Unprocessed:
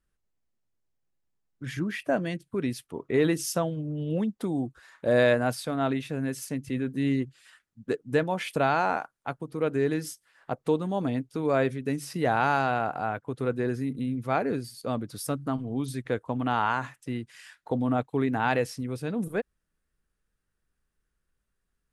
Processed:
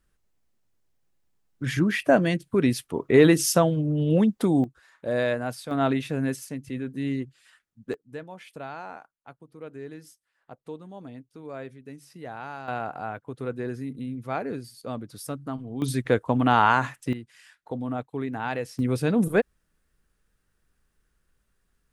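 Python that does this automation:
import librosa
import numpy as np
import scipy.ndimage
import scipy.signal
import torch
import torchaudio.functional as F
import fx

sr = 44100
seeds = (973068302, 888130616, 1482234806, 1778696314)

y = fx.gain(x, sr, db=fx.steps((0.0, 7.5), (4.64, -4.0), (5.71, 3.5), (6.36, -2.5), (7.94, -13.5), (12.68, -3.5), (15.82, 7.0), (17.13, -4.5), (18.79, 8.0)))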